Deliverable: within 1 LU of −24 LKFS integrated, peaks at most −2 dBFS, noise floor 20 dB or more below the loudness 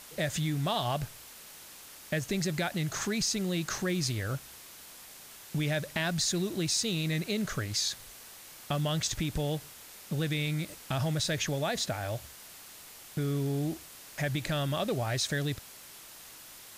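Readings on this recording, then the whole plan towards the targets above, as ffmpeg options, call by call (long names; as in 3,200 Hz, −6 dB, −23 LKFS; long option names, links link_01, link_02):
background noise floor −50 dBFS; target noise floor −52 dBFS; integrated loudness −31.5 LKFS; sample peak −16.0 dBFS; target loudness −24.0 LKFS
→ -af "afftdn=noise_reduction=6:noise_floor=-50"
-af "volume=7.5dB"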